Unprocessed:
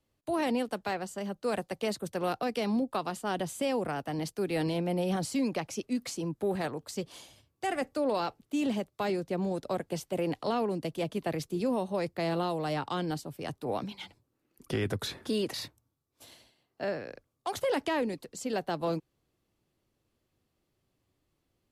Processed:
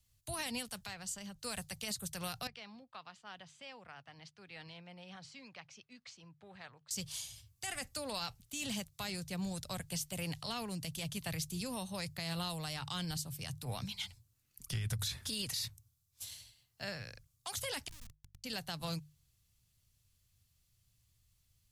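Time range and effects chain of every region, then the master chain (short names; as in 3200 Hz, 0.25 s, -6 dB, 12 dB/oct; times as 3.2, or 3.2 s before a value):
0.86–1.39 high shelf 8900 Hz -10.5 dB + compressor 3:1, threshold -37 dBFS
2.47–6.91 HPF 1300 Hz 6 dB/oct + tape spacing loss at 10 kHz 41 dB
17.88–18.44 Gaussian blur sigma 23 samples + compressor 8:1, threshold -47 dBFS + Schmitt trigger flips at -47 dBFS
whole clip: EQ curve 110 Hz 0 dB, 330 Hz -28 dB, 6500 Hz +2 dB; limiter -36.5 dBFS; notches 50/100/150 Hz; gain +8.5 dB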